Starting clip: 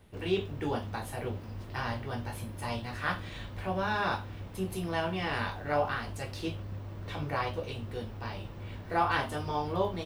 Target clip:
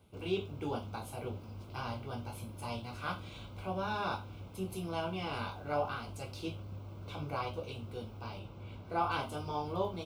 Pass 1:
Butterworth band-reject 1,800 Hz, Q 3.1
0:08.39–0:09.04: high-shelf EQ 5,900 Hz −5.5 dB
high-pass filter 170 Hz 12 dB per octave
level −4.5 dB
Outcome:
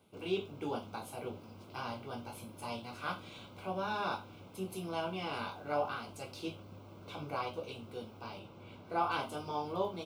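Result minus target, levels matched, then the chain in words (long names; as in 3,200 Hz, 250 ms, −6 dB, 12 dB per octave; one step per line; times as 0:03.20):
125 Hz band −6.0 dB
Butterworth band-reject 1,800 Hz, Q 3.1
0:08.39–0:09.04: high-shelf EQ 5,900 Hz −5.5 dB
high-pass filter 56 Hz 12 dB per octave
level −4.5 dB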